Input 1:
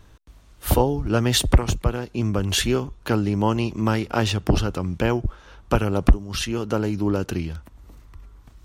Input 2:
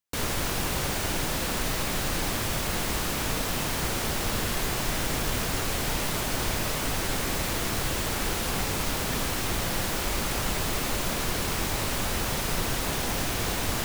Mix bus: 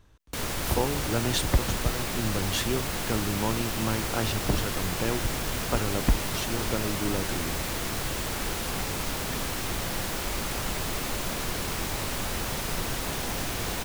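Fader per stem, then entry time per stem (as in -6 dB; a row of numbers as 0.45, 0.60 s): -8.0, -2.5 dB; 0.00, 0.20 s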